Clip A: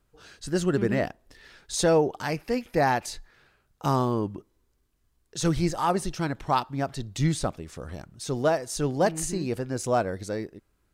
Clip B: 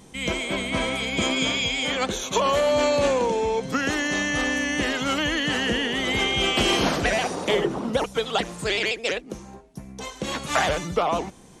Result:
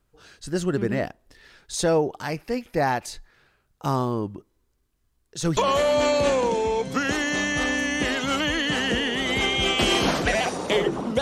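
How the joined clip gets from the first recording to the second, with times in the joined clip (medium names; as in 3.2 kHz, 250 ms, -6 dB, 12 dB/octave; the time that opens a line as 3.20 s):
clip A
5.57 s: go over to clip B from 2.35 s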